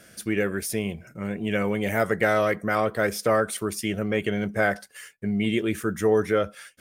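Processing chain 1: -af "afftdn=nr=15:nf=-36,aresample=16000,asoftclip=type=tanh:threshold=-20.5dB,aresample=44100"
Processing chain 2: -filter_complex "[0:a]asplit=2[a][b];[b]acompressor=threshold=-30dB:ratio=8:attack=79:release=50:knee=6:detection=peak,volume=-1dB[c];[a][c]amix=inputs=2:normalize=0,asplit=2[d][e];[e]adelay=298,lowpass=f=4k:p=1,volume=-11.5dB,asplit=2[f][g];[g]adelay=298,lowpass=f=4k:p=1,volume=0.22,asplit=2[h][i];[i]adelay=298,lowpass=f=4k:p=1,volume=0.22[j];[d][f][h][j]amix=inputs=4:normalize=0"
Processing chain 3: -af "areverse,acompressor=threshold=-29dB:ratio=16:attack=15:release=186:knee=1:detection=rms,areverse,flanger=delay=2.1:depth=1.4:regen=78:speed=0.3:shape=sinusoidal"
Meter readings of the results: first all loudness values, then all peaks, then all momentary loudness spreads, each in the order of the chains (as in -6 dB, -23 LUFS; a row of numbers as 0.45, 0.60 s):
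-29.0, -21.0, -39.0 LUFS; -20.0, -3.0, -24.0 dBFS; 6, 8, 5 LU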